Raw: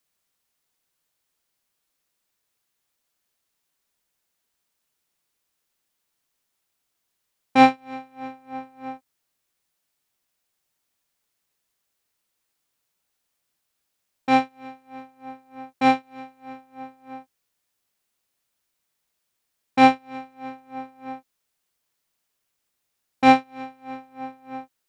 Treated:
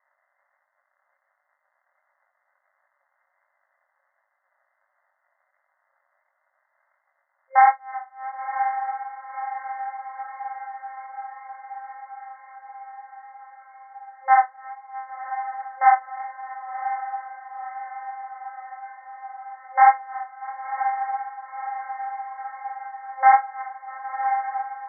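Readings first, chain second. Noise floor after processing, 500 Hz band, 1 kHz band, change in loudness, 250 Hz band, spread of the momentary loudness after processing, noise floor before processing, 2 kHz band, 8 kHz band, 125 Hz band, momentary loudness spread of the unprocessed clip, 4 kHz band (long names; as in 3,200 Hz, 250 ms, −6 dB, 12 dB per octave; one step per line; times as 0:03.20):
−74 dBFS, −14.0 dB, +4.0 dB, −5.0 dB, below −40 dB, 22 LU, −78 dBFS, +1.0 dB, can't be measured, below −40 dB, 21 LU, below −40 dB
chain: surface crackle 270 per second −52 dBFS
brick-wall band-pass 530–2,100 Hz
chorus effect 1.4 Hz, delay 19 ms, depth 5.6 ms
feedback delay with all-pass diffusion 1,031 ms, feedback 69%, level −11 dB
boost into a limiter +12 dB
level −3.5 dB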